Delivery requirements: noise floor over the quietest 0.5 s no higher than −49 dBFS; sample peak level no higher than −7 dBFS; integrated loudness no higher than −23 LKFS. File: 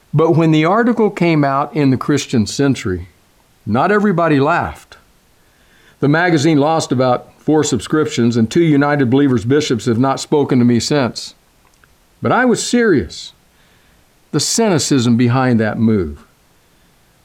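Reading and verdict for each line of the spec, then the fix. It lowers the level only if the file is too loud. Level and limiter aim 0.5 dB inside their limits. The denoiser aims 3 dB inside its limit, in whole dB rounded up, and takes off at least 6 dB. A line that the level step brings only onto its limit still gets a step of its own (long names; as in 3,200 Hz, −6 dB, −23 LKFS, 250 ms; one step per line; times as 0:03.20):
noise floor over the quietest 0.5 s −52 dBFS: in spec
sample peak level −4.5 dBFS: out of spec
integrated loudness −14.5 LKFS: out of spec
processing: level −9 dB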